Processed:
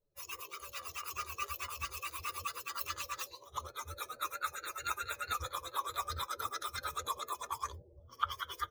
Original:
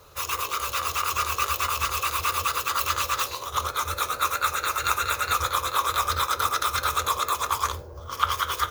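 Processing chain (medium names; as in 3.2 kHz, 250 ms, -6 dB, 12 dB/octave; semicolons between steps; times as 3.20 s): expander on every frequency bin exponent 2; trim -8 dB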